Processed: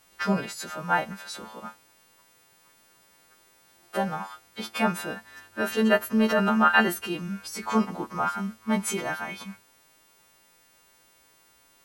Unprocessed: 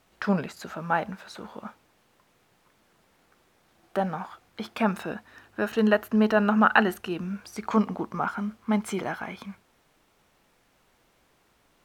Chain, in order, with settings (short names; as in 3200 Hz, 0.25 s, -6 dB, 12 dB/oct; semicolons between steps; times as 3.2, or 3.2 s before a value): frequency quantiser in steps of 2 st; 6.16–6.82 transient shaper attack -5 dB, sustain +1 dB